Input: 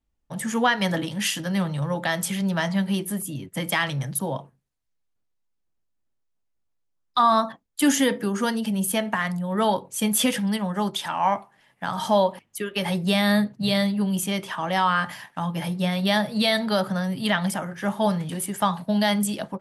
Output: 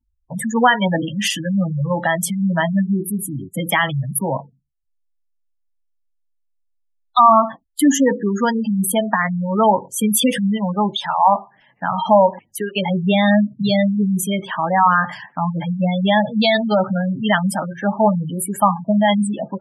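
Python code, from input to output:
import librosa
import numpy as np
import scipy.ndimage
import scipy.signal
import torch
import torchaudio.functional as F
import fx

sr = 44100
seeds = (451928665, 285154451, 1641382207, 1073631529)

y = fx.dynamic_eq(x, sr, hz=870.0, q=1.3, threshold_db=-32.0, ratio=4.0, max_db=3)
y = fx.spec_gate(y, sr, threshold_db=-15, keep='strong')
y = y * 10.0 ** (6.0 / 20.0)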